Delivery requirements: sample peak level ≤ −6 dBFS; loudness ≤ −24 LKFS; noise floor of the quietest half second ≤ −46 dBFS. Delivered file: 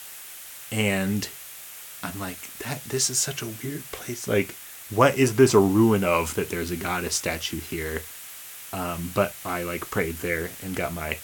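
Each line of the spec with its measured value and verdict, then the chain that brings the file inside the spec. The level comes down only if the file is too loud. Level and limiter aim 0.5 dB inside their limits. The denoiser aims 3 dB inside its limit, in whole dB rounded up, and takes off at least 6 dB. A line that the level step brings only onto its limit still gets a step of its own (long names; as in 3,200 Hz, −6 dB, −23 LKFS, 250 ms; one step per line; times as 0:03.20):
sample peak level −4.0 dBFS: out of spec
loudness −25.0 LKFS: in spec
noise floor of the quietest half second −41 dBFS: out of spec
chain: broadband denoise 8 dB, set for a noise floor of −41 dBFS
brickwall limiter −6.5 dBFS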